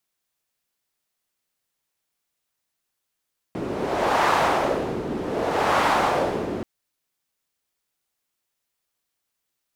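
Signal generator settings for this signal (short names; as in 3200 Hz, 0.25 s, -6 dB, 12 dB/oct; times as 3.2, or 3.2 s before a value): wind-like swept noise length 3.08 s, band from 320 Hz, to 960 Hz, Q 1.5, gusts 2, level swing 9 dB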